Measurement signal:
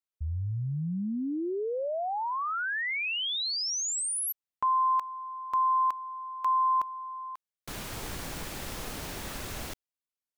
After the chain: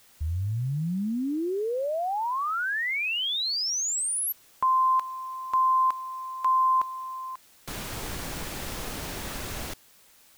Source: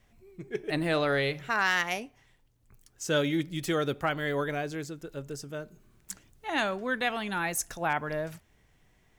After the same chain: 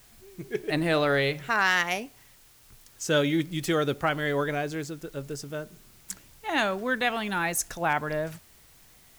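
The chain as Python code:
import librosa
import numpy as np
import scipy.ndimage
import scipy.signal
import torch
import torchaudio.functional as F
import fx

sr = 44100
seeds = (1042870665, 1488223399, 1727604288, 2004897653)

y = fx.quant_dither(x, sr, seeds[0], bits=10, dither='triangular')
y = F.gain(torch.from_numpy(y), 3.0).numpy()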